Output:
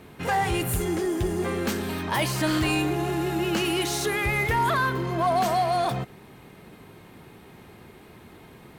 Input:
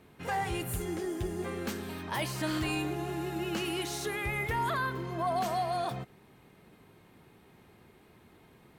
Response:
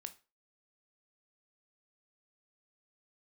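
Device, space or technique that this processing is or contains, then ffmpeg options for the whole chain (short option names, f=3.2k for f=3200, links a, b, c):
parallel distortion: -filter_complex "[0:a]asplit=2[a][b];[b]asoftclip=type=hard:threshold=-39.5dB,volume=-4.5dB[c];[a][c]amix=inputs=2:normalize=0,volume=6.5dB"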